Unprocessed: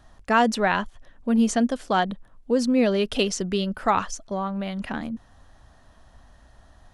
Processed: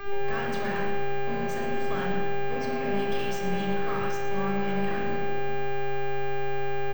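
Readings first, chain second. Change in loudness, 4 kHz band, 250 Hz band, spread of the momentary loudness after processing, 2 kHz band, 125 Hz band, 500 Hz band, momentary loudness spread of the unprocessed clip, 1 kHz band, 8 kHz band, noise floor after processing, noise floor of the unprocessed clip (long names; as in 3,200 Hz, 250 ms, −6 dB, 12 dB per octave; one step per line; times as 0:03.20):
−6.0 dB, −7.5 dB, −9.0 dB, 3 LU, −2.5 dB, +0.5 dB, −1.5 dB, 12 LU, −4.5 dB, −14.0 dB, −28 dBFS, −55 dBFS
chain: gate on every frequency bin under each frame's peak −30 dB strong
guitar amp tone stack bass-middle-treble 6-0-2
downward compressor, threshold −49 dBFS, peak gain reduction 13.5 dB
hum with harmonics 400 Hz, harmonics 5, −50 dBFS −3 dB per octave
mid-hump overdrive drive 38 dB, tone 1,300 Hz, clips at −18.5 dBFS
echo with shifted repeats 118 ms, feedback 51%, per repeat +140 Hz, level −11 dB
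rectangular room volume 2,900 cubic metres, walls furnished, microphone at 5.6 metres
bad sample-rate conversion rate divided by 2×, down filtered, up hold
multiband upward and downward expander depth 40%
level −6 dB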